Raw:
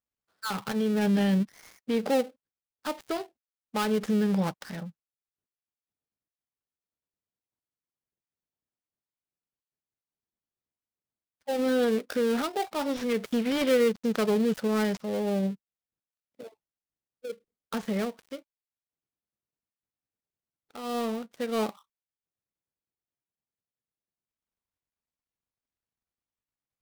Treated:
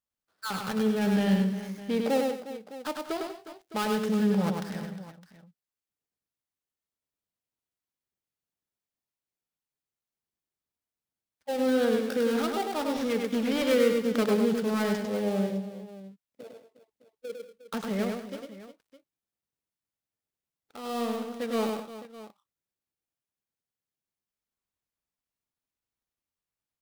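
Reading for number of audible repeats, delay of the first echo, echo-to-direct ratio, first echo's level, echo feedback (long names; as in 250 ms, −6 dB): 4, 101 ms, −3.0 dB, −4.0 dB, repeats not evenly spaced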